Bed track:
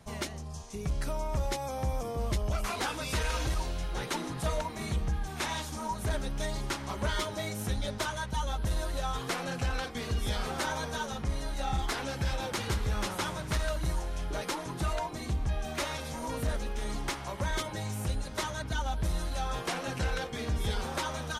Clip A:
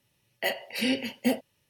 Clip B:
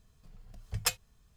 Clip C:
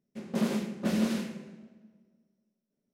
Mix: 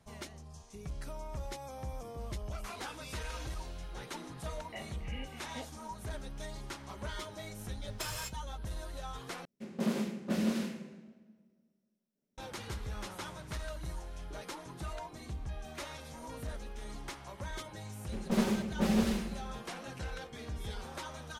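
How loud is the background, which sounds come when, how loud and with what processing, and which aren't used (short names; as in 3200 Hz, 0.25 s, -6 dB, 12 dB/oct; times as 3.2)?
bed track -9.5 dB
4.3 add A -13.5 dB + rippled Chebyshev low-pass 3000 Hz, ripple 9 dB
7.14 add B -15.5 dB + non-linear reverb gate 0.28 s flat, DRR -7.5 dB
9.45 replace with C -3.5 dB
17.96 add C + minimum comb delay 5.2 ms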